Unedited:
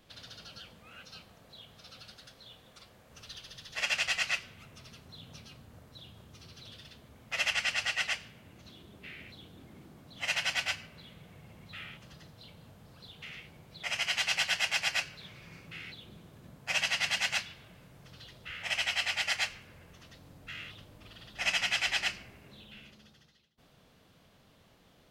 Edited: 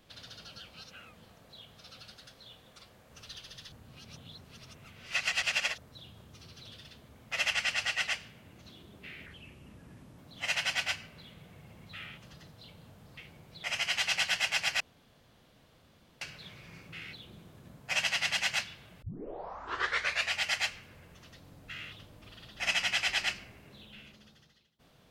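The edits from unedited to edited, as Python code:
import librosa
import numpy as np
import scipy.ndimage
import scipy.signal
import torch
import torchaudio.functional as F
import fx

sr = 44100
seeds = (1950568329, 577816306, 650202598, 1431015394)

y = fx.edit(x, sr, fx.reverse_span(start_s=0.71, length_s=0.54),
    fx.reverse_span(start_s=3.72, length_s=2.06),
    fx.speed_span(start_s=9.26, length_s=0.72, speed=0.78),
    fx.cut(start_s=12.97, length_s=0.4),
    fx.insert_room_tone(at_s=15.0, length_s=1.41),
    fx.tape_start(start_s=17.81, length_s=1.33), tone=tone)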